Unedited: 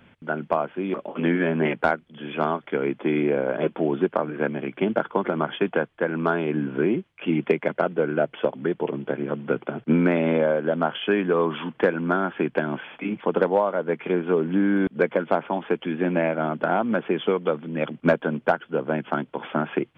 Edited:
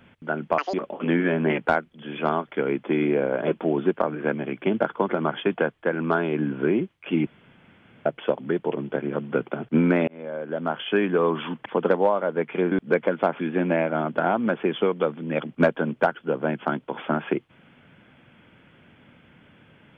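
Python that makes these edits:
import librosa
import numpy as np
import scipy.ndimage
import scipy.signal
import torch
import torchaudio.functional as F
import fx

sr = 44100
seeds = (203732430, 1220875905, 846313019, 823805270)

y = fx.edit(x, sr, fx.speed_span(start_s=0.58, length_s=0.31, speed=1.99),
    fx.room_tone_fill(start_s=7.42, length_s=0.79),
    fx.fade_in_span(start_s=10.23, length_s=0.89),
    fx.cut(start_s=11.81, length_s=1.36),
    fx.cut(start_s=14.23, length_s=0.57),
    fx.cut(start_s=15.48, length_s=0.37), tone=tone)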